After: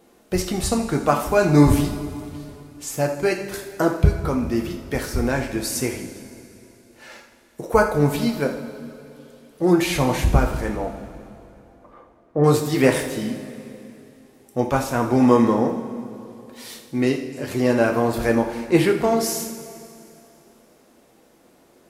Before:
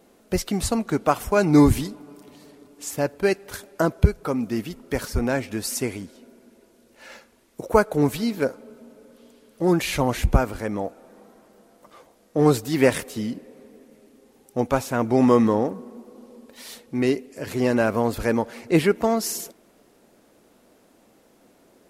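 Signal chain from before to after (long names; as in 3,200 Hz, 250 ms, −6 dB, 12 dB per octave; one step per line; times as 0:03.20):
0:10.75–0:12.44: low-pass filter 1,500 Hz 12 dB per octave
echo with a time of its own for lows and highs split 330 Hz, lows 201 ms, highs 82 ms, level −14.5 dB
coupled-rooms reverb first 0.42 s, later 2.8 s, from −15 dB, DRR 2 dB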